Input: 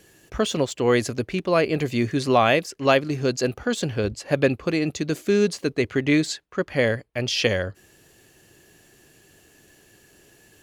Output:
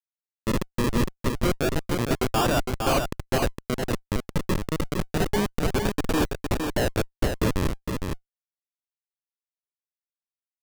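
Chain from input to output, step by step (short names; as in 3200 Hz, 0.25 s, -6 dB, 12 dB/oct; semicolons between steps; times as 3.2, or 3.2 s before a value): local time reversal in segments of 0.13 s; HPF 320 Hz 6 dB/oct; resonant high shelf 2300 Hz -11 dB, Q 3; in parallel at -3 dB: compressor 4:1, threshold -33 dBFS, peak gain reduction 18 dB; on the sum: bit-crush 8-bit; low-pass sweep 960 Hz -> 2300 Hz, 5.23–6.46; Schmitt trigger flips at -17 dBFS; decimation with a swept rate 41×, swing 100% 0.29 Hz; on a send: echo 0.46 s -5 dB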